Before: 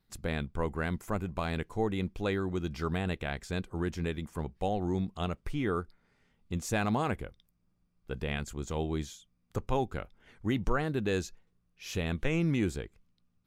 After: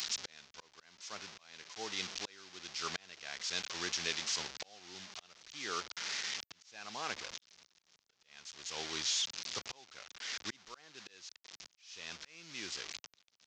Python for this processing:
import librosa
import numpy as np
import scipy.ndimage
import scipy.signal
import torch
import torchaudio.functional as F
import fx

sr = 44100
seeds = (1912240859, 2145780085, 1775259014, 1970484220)

y = fx.delta_mod(x, sr, bps=32000, step_db=-34.0)
y = np.diff(y, prepend=0.0)
y = fx.auto_swell(y, sr, attack_ms=740.0)
y = fx.band_widen(y, sr, depth_pct=40)
y = F.gain(torch.from_numpy(y), 12.5).numpy()